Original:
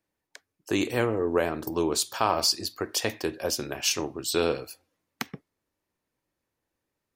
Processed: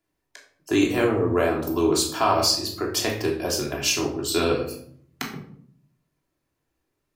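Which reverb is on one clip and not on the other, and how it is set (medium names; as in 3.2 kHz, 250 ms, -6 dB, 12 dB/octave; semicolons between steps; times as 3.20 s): simulated room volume 800 m³, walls furnished, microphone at 3.1 m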